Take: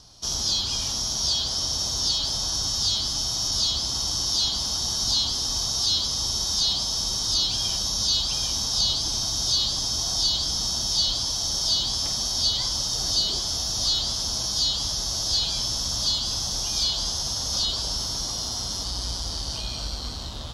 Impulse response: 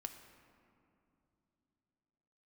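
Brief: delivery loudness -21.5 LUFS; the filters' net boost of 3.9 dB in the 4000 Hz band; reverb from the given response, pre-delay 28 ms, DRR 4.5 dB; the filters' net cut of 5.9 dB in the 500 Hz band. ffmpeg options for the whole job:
-filter_complex "[0:a]equalizer=f=500:t=o:g=-8.5,equalizer=f=4k:t=o:g=5,asplit=2[a][b];[1:a]atrim=start_sample=2205,adelay=28[c];[b][c]afir=irnorm=-1:irlink=0,volume=-1dB[d];[a][d]amix=inputs=2:normalize=0,volume=-3dB"

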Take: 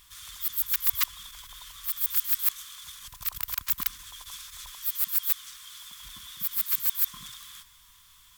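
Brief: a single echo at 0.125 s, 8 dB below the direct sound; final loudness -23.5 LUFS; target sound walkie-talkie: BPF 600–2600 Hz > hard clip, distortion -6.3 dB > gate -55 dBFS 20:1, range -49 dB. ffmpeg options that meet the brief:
-af "highpass=600,lowpass=2.6k,aecho=1:1:125:0.398,asoftclip=type=hard:threshold=-37.5dB,agate=range=-49dB:threshold=-55dB:ratio=20,volume=24.5dB"

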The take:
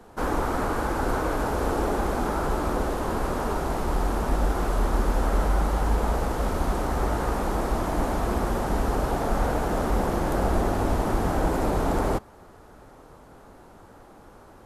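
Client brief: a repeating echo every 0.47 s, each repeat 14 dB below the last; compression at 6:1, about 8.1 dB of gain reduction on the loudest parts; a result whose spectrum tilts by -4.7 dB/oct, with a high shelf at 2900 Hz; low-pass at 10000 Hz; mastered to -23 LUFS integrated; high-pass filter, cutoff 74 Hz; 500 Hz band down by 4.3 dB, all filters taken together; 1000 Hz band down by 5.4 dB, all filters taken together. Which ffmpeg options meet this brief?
-af "highpass=74,lowpass=10k,equalizer=f=500:t=o:g=-4,equalizer=f=1k:t=o:g=-5,highshelf=f=2.9k:g=-5.5,acompressor=threshold=-33dB:ratio=6,aecho=1:1:470|940:0.2|0.0399,volume=14dB"

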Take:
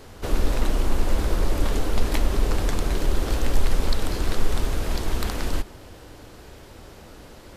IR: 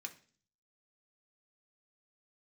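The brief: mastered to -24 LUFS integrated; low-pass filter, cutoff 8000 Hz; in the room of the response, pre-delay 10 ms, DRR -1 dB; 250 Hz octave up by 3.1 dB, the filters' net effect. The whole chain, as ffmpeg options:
-filter_complex "[0:a]lowpass=8k,equalizer=f=250:t=o:g=4,asplit=2[a][b];[1:a]atrim=start_sample=2205,adelay=10[c];[b][c]afir=irnorm=-1:irlink=0,volume=4dB[d];[a][d]amix=inputs=2:normalize=0,volume=1dB"

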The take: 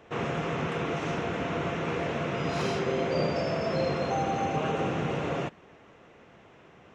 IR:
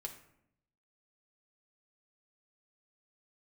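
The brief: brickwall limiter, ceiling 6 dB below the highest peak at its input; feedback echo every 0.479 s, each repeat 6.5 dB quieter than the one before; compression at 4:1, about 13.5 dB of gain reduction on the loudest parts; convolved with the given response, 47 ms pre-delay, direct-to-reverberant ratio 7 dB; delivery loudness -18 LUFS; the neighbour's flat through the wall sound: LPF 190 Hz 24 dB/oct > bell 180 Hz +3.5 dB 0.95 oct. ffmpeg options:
-filter_complex "[0:a]acompressor=threshold=-41dB:ratio=4,alimiter=level_in=10.5dB:limit=-24dB:level=0:latency=1,volume=-10.5dB,aecho=1:1:479|958|1437|1916|2395|2874:0.473|0.222|0.105|0.0491|0.0231|0.0109,asplit=2[a][b];[1:a]atrim=start_sample=2205,adelay=47[c];[b][c]afir=irnorm=-1:irlink=0,volume=-4.5dB[d];[a][d]amix=inputs=2:normalize=0,lowpass=f=190:w=0.5412,lowpass=f=190:w=1.3066,equalizer=f=180:t=o:w=0.95:g=3.5,volume=29.5dB"

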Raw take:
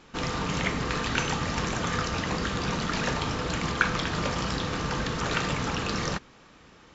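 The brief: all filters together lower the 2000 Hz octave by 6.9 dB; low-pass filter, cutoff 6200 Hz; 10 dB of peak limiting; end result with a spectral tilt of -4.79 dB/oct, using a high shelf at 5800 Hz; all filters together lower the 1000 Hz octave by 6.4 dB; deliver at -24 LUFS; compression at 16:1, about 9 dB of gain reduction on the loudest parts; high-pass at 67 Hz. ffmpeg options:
-af "highpass=67,lowpass=6.2k,equalizer=f=1k:t=o:g=-6,equalizer=f=2k:t=o:g=-6,highshelf=f=5.8k:g=-7.5,acompressor=threshold=-33dB:ratio=16,volume=16dB,alimiter=limit=-14.5dB:level=0:latency=1"

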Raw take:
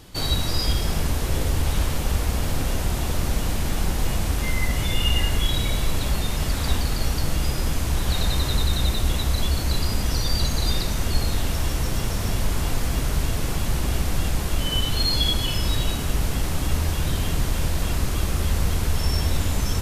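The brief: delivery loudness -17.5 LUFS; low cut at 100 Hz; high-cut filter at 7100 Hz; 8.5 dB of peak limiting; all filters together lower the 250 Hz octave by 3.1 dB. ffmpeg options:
-af "highpass=100,lowpass=7.1k,equalizer=f=250:t=o:g=-4,volume=12.5dB,alimiter=limit=-8dB:level=0:latency=1"

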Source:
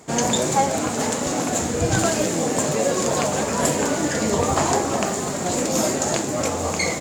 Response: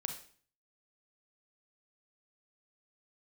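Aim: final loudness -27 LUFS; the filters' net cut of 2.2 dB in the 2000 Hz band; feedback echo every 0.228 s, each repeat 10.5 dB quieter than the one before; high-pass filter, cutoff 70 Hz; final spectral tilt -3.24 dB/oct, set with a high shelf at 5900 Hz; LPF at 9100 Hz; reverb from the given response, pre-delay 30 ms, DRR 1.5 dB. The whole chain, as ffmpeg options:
-filter_complex "[0:a]highpass=70,lowpass=9.1k,equalizer=f=2k:t=o:g=-3.5,highshelf=f=5.9k:g=7,aecho=1:1:228|456|684:0.299|0.0896|0.0269,asplit=2[a][b];[1:a]atrim=start_sample=2205,adelay=30[c];[b][c]afir=irnorm=-1:irlink=0,volume=-1.5dB[d];[a][d]amix=inputs=2:normalize=0,volume=-9dB"

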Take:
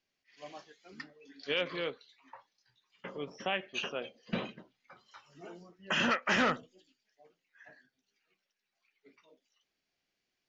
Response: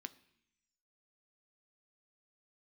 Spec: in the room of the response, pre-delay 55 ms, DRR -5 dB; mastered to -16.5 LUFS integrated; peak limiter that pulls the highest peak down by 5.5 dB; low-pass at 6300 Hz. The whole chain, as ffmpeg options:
-filter_complex "[0:a]lowpass=6.3k,alimiter=level_in=1dB:limit=-24dB:level=0:latency=1,volume=-1dB,asplit=2[a][b];[1:a]atrim=start_sample=2205,adelay=55[c];[b][c]afir=irnorm=-1:irlink=0,volume=9.5dB[d];[a][d]amix=inputs=2:normalize=0,volume=15dB"

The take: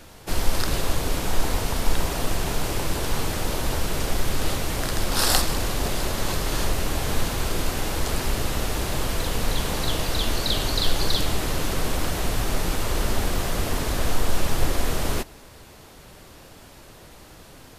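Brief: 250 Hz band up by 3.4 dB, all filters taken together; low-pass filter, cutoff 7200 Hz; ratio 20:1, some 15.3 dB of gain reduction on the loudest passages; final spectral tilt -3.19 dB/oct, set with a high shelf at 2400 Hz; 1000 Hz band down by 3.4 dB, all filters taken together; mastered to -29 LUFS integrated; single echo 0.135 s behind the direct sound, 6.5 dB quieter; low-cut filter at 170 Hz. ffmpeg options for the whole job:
-af "highpass=170,lowpass=7.2k,equalizer=f=250:t=o:g=6,equalizer=f=1k:t=o:g=-5.5,highshelf=f=2.4k:g=3,acompressor=threshold=-31dB:ratio=20,aecho=1:1:135:0.473,volume=4.5dB"

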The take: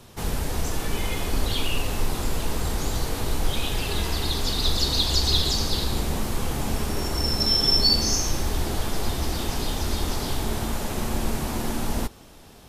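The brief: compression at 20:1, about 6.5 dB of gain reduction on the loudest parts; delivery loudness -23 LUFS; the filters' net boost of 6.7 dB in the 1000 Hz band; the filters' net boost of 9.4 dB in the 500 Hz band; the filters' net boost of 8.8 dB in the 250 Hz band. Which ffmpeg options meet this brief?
-af "equalizer=f=250:t=o:g=8.5,equalizer=f=500:t=o:g=8,equalizer=f=1k:t=o:g=5,acompressor=threshold=-21dB:ratio=20,volume=4dB"

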